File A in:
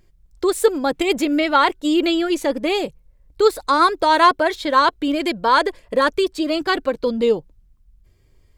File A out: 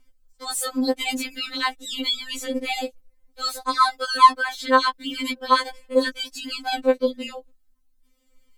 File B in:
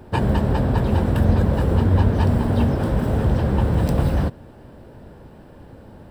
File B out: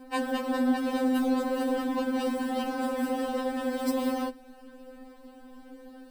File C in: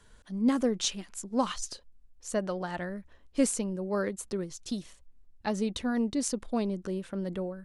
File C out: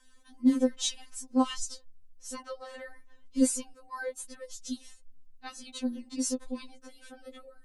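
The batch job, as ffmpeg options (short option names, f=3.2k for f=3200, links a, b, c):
-af "highshelf=f=4k:g=6,afftfilt=real='re*3.46*eq(mod(b,12),0)':imag='im*3.46*eq(mod(b,12),0)':win_size=2048:overlap=0.75,volume=-2dB"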